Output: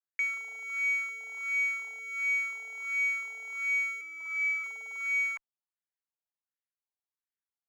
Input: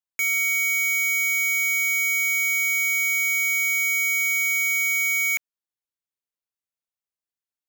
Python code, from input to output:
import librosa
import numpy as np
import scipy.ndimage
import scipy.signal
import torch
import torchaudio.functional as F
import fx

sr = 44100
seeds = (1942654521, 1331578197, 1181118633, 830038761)

y = fx.filter_lfo_bandpass(x, sr, shape='sine', hz=1.4, low_hz=720.0, high_hz=1900.0, q=3.4)
y = fx.cheby_harmonics(y, sr, harmonics=(2, 4), levels_db=(-44, -41), full_scale_db=-22.5)
y = fx.robotise(y, sr, hz=326.0, at=(4.01, 4.64))